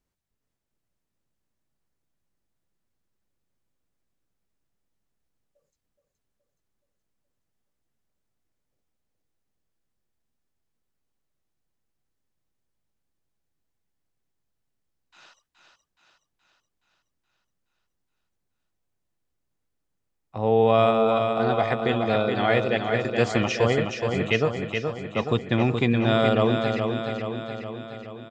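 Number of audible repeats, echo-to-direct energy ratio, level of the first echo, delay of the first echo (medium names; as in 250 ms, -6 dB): 7, -3.5 dB, -5.5 dB, 422 ms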